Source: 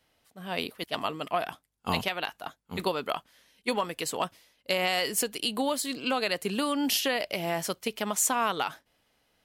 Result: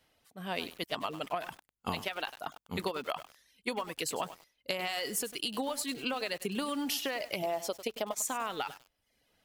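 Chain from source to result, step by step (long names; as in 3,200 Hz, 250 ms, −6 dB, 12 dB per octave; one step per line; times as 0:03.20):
reverb reduction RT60 0.68 s
0:07.42–0:08.22: graphic EQ with 15 bands 160 Hz −12 dB, 630 Hz +8 dB, 1,600 Hz −7 dB, 10,000 Hz −6 dB
downward compressor 16 to 1, threshold −30 dBFS, peak gain reduction 9.5 dB
feedback echo at a low word length 100 ms, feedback 35%, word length 7 bits, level −12 dB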